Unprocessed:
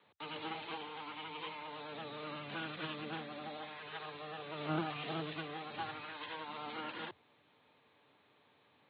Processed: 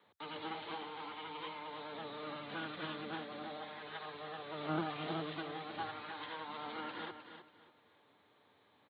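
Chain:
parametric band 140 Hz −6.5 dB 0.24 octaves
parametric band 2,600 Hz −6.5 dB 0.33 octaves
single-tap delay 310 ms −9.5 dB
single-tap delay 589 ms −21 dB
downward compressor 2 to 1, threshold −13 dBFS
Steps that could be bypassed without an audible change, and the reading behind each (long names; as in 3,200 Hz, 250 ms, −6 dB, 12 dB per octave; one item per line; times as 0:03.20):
downward compressor, threshold −13 dBFS: peak of its input −24.0 dBFS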